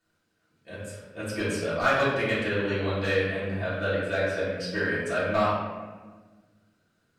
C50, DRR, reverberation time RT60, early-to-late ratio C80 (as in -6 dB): -0.5 dB, -11.5 dB, 1.4 s, 2.5 dB